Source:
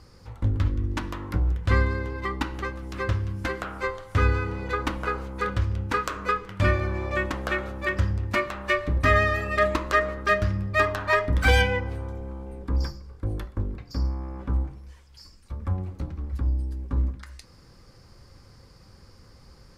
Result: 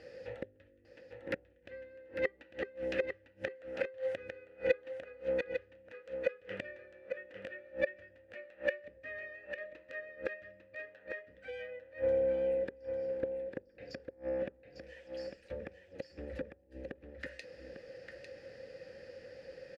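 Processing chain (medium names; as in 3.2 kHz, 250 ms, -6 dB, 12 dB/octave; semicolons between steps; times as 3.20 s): inverted gate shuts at -23 dBFS, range -30 dB; vowel filter e; band-stop 400 Hz, Q 12; on a send: delay 850 ms -7.5 dB; on the sum: trim +16 dB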